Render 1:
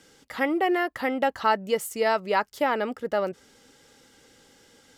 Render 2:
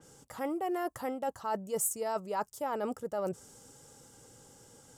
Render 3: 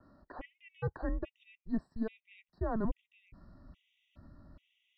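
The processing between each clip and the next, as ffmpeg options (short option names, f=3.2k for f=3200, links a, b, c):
-af "equalizer=f=125:t=o:w=1:g=9,equalizer=f=250:t=o:w=1:g=-4,equalizer=f=1k:t=o:w=1:g=3,equalizer=f=2k:t=o:w=1:g=-11,equalizer=f=4k:t=o:w=1:g=-9,equalizer=f=8k:t=o:w=1:g=7,areverse,acompressor=threshold=-31dB:ratio=6,areverse,adynamicequalizer=threshold=0.00178:dfrequency=4200:dqfactor=0.7:tfrequency=4200:tqfactor=0.7:attack=5:release=100:ratio=0.375:range=2.5:mode=boostabove:tftype=highshelf"
-af "highpass=f=260:t=q:w=0.5412,highpass=f=260:t=q:w=1.307,lowpass=f=3.5k:t=q:w=0.5176,lowpass=f=3.5k:t=q:w=0.7071,lowpass=f=3.5k:t=q:w=1.932,afreqshift=-220,asubboost=boost=5.5:cutoff=170,afftfilt=real='re*gt(sin(2*PI*1.2*pts/sr)*(1-2*mod(floor(b*sr/1024/1900),2)),0)':imag='im*gt(sin(2*PI*1.2*pts/sr)*(1-2*mod(floor(b*sr/1024/1900),2)),0)':win_size=1024:overlap=0.75"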